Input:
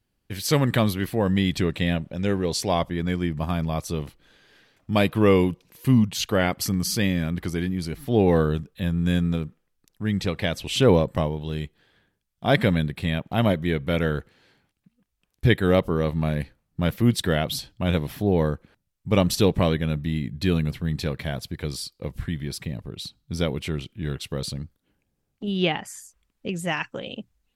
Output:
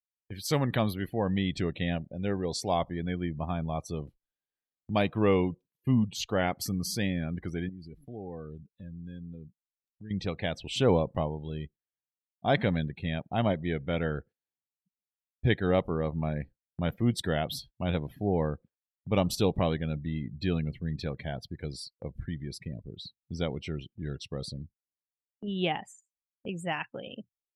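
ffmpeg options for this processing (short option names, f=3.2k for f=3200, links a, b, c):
-filter_complex "[0:a]asettb=1/sr,asplit=3[a][b][c];[a]atrim=end=7.694[d];[b]atrim=start=7.69:end=10.11,asetpts=PTS-STARTPTS,afade=t=in:d=0.004:c=qsin,afade=t=out:st=2.416:d=0.004:c=qsin,acompressor=threshold=-38dB:ratio=2.5:attack=3.2:release=140:knee=1:detection=peak[e];[c]atrim=start=10.106[f];[d][e]acrossfade=d=0.004:c1=hsin:c2=qsin[g];[g][f]acrossfade=d=0.004:c1=qsin:c2=hsin,asettb=1/sr,asplit=3[h][i][j];[h]atrim=end=23.554[k];[i]atrim=start=23.55:end=24.41,asetpts=PTS-STARTPTS,afade=t=in:d=0.004:c=qsin,afade=t=out:st=0.856:d=0.004:c=qsin,equalizer=f=5.5k:w=6.6:g=7.5[l];[j]atrim=start=24.406[m];[k][l]acrossfade=d=0.004:c1=hsin:c2=qsin[n];[n][m]acrossfade=d=0.004:c1=qsin:c2=hsin,afftdn=nr=25:nf=-38,agate=range=-12dB:threshold=-43dB:ratio=16:detection=peak,equalizer=f=760:w=3.1:g=5,volume=-7dB"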